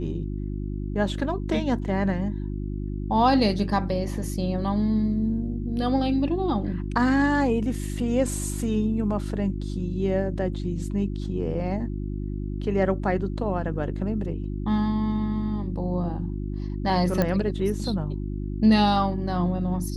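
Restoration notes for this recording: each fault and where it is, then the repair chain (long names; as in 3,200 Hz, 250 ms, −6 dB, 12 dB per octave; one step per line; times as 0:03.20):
mains hum 50 Hz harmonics 7 −30 dBFS
0:17.22: click −11 dBFS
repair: click removal
hum removal 50 Hz, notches 7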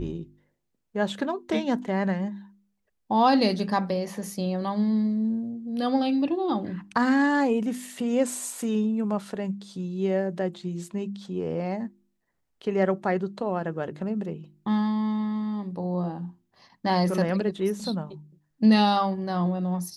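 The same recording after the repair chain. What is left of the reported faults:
none of them is left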